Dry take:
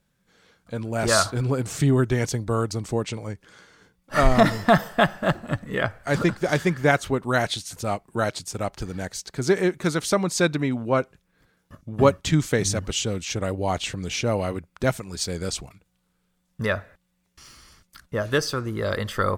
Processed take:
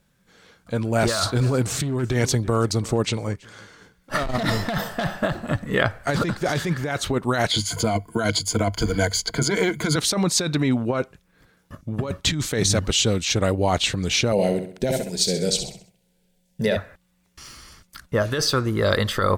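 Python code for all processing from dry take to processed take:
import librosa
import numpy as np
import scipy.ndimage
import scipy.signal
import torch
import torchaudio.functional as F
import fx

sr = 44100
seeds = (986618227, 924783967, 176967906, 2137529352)

y = fx.chain(x, sr, fx.overload_stage(gain_db=14.5),
    fx.echo_single(ms=331, db=-24.0), at=(1.08, 5.14))
y = fx.chain(y, sr, fx.ripple_eq(per_octave=1.8, db=15),
    fx.band_squash(depth_pct=40), at=(7.51, 9.96))
y = fx.chain(y, sr, fx.peak_eq(hz=340.0, db=13.0, octaves=0.37),
    fx.fixed_phaser(hz=320.0, stages=6),
    fx.echo_feedback(ms=65, feedback_pct=41, wet_db=-8), at=(14.32, 16.77))
y = fx.dynamic_eq(y, sr, hz=3900.0, q=3.4, threshold_db=-47.0, ratio=4.0, max_db=6)
y = fx.over_compress(y, sr, threshold_db=-24.0, ratio=-1.0)
y = y * librosa.db_to_amplitude(3.5)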